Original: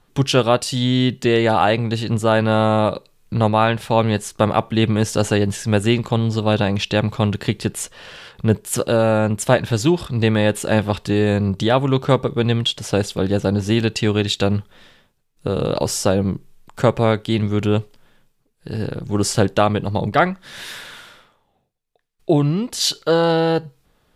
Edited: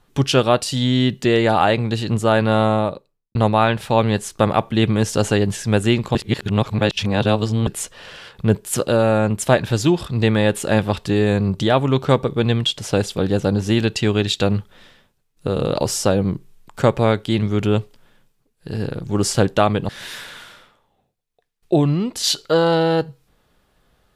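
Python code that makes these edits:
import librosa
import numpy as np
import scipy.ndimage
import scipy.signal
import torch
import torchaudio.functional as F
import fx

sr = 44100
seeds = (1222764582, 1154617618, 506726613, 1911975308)

y = fx.studio_fade_out(x, sr, start_s=2.58, length_s=0.77)
y = fx.edit(y, sr, fx.reverse_span(start_s=6.15, length_s=1.52),
    fx.cut(start_s=19.89, length_s=0.57), tone=tone)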